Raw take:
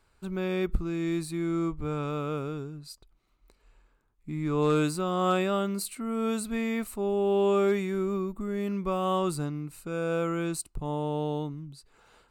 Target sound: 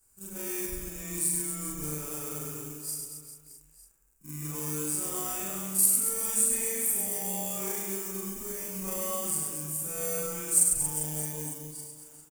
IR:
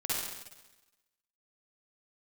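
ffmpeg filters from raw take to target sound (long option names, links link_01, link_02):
-filter_complex "[0:a]afftfilt=real='re':imag='-im':win_size=4096:overlap=0.75,asplit=2[link_01][link_02];[link_02]acrusher=samples=33:mix=1:aa=0.000001,volume=-8dB[link_03];[link_01][link_03]amix=inputs=2:normalize=0,alimiter=level_in=0.5dB:limit=-24dB:level=0:latency=1:release=475,volume=-0.5dB,adynamicequalizer=threshold=0.00126:dfrequency=2900:dqfactor=0.97:tfrequency=2900:tqfactor=0.97:attack=5:release=100:ratio=0.375:range=3:mode=boostabove:tftype=bell,aecho=1:1:100|230|399|618.7|904.3:0.631|0.398|0.251|0.158|0.1,aexciter=amount=12.2:drive=8.9:freq=6100,volume=-7dB"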